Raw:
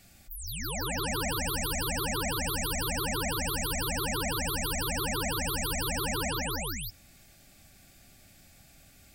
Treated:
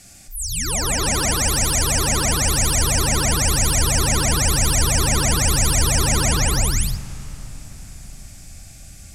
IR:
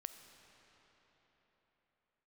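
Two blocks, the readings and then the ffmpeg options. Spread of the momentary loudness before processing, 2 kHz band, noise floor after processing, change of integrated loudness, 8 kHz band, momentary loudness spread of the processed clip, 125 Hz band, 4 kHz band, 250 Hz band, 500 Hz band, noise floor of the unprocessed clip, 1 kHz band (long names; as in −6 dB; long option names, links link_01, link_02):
5 LU, +9.0 dB, −41 dBFS, +12.5 dB, +16.5 dB, 9 LU, +15.5 dB, +11.0 dB, +10.0 dB, +8.5 dB, −57 dBFS, +9.0 dB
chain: -filter_complex "[0:a]aexciter=amount=3.2:drive=4:freq=5300,lowpass=frequency=9900:width=0.5412,lowpass=frequency=9900:width=1.3066,asplit=2[link_01][link_02];[link_02]asubboost=boost=9:cutoff=140[link_03];[1:a]atrim=start_sample=2205,adelay=62[link_04];[link_03][link_04]afir=irnorm=-1:irlink=0,volume=-2dB[link_05];[link_01][link_05]amix=inputs=2:normalize=0,volume=8dB"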